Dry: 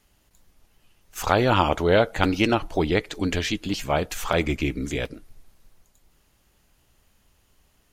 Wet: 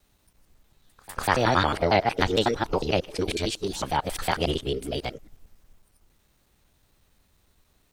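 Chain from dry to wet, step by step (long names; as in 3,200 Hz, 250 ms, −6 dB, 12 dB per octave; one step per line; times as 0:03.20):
reversed piece by piece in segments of 91 ms
formants moved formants +5 semitones
echo ahead of the sound 197 ms −24 dB
level −2 dB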